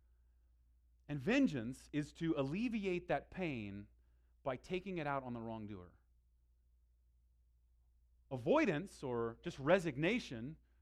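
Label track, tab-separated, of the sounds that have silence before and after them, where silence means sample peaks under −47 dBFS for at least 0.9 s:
1.090000	5.840000	sound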